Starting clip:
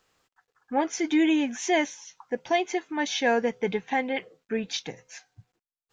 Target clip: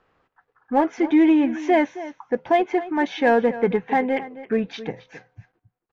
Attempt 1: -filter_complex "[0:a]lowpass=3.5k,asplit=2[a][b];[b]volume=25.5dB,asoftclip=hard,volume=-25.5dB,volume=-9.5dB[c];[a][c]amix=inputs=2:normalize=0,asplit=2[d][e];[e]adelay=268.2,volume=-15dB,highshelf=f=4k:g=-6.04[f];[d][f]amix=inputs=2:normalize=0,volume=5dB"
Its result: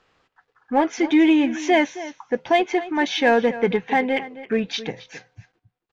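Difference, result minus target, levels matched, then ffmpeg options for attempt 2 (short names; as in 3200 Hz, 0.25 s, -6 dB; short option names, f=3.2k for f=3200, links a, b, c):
4000 Hz band +9.0 dB
-filter_complex "[0:a]lowpass=1.7k,asplit=2[a][b];[b]volume=25.5dB,asoftclip=hard,volume=-25.5dB,volume=-9.5dB[c];[a][c]amix=inputs=2:normalize=0,asplit=2[d][e];[e]adelay=268.2,volume=-15dB,highshelf=f=4k:g=-6.04[f];[d][f]amix=inputs=2:normalize=0,volume=5dB"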